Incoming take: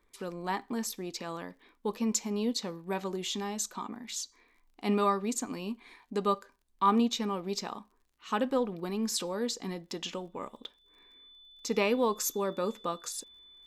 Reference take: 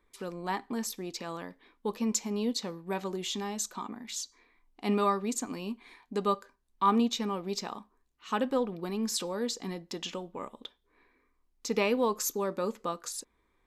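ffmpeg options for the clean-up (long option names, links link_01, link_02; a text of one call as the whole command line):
ffmpeg -i in.wav -af "adeclick=threshold=4,bandreject=frequency=3500:width=30" out.wav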